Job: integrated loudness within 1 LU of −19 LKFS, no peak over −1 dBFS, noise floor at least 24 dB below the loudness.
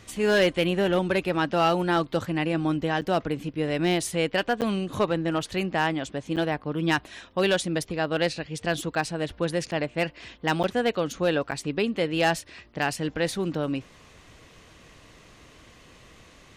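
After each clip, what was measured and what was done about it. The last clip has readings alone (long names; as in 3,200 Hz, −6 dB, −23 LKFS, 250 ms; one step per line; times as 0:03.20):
share of clipped samples 0.3%; peaks flattened at −14.5 dBFS; number of dropouts 6; longest dropout 8.4 ms; integrated loudness −26.5 LKFS; sample peak −14.5 dBFS; target loudness −19.0 LKFS
→ clipped peaks rebuilt −14.5 dBFS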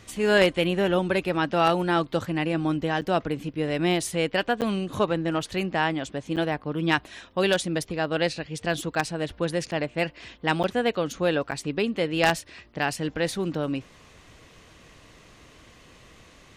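share of clipped samples 0.0%; number of dropouts 6; longest dropout 8.4 ms
→ repair the gap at 0:03.01/0:04.61/0:06.36/0:09.71/0:10.63/0:11.51, 8.4 ms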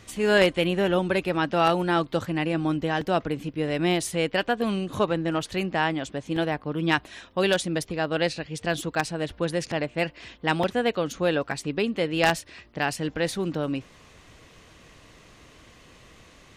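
number of dropouts 0; integrated loudness −26.0 LKFS; sample peak −5.5 dBFS; target loudness −19.0 LKFS
→ level +7 dB
brickwall limiter −1 dBFS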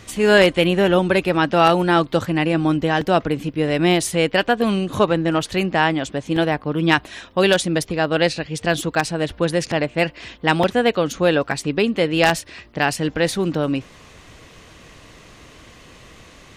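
integrated loudness −19.0 LKFS; sample peak −1.0 dBFS; background noise floor −46 dBFS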